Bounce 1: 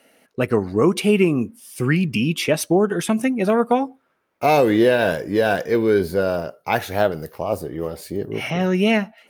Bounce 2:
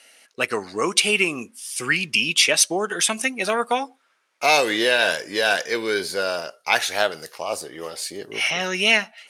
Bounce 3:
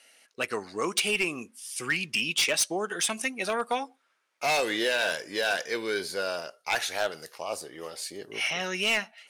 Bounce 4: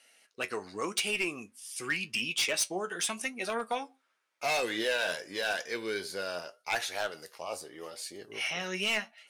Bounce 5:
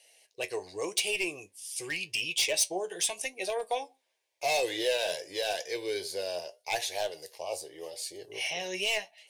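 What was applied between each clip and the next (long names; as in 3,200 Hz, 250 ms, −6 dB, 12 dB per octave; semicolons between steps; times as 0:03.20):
meter weighting curve ITU-R 468
gain into a clipping stage and back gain 12.5 dB; level −6.5 dB
flanger 0.87 Hz, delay 7.9 ms, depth 3.7 ms, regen +60%
phaser with its sweep stopped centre 550 Hz, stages 4; level +3.5 dB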